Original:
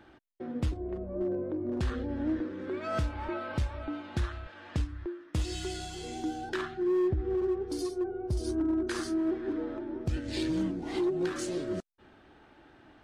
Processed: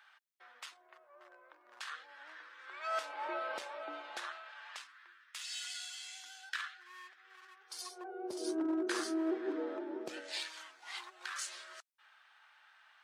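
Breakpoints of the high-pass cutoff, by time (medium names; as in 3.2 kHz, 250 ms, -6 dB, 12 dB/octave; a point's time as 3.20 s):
high-pass 24 dB/octave
2.63 s 1.1 kHz
3.24 s 500 Hz
3.97 s 500 Hz
5.15 s 1.4 kHz
7.59 s 1.4 kHz
8.31 s 360 Hz
10.08 s 360 Hz
10.52 s 1.1 kHz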